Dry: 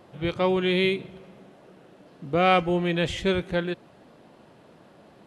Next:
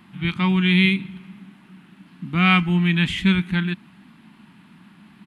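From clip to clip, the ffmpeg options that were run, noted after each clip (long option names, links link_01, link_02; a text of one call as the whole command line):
ffmpeg -i in.wav -af "firequalizer=gain_entry='entry(130,0);entry(190,13);entry(500,-23);entry(900,1);entry(2300,9);entry(5800,-3);entry(9800,5)':delay=0.05:min_phase=1" out.wav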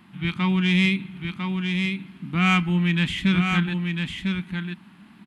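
ffmpeg -i in.wav -filter_complex "[0:a]asoftclip=type=tanh:threshold=-8.5dB,asplit=2[link_01][link_02];[link_02]aecho=0:1:1000:0.562[link_03];[link_01][link_03]amix=inputs=2:normalize=0,volume=-2dB" out.wav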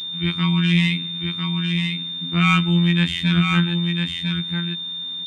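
ffmpeg -i in.wav -af "aeval=exprs='val(0)+0.0398*sin(2*PI*3600*n/s)':channel_layout=same,afftfilt=real='hypot(re,im)*cos(PI*b)':imag='0':win_size=2048:overlap=0.75,volume=4.5dB" out.wav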